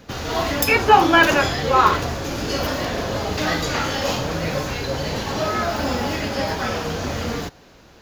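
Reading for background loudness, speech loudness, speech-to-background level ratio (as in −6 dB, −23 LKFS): −23.5 LKFS, −17.0 LKFS, 6.5 dB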